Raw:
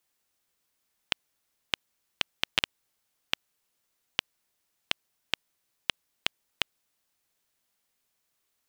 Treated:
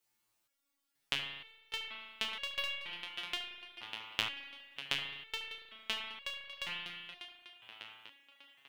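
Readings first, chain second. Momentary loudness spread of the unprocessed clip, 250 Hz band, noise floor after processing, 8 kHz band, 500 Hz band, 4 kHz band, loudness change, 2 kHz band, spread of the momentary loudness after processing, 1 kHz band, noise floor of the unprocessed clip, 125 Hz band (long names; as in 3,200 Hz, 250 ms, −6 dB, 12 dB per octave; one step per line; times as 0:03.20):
6 LU, −6.0 dB, −83 dBFS, −6.5 dB, −4.0 dB, −4.5 dB, −5.5 dB, −3.5 dB, 14 LU, −3.5 dB, −78 dBFS, −5.0 dB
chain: tape delay 597 ms, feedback 61%, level −8.5 dB, low-pass 5,600 Hz
spring reverb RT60 1.3 s, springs 35 ms, chirp 60 ms, DRR 1.5 dB
step-sequenced resonator 2.1 Hz 110–560 Hz
level +7.5 dB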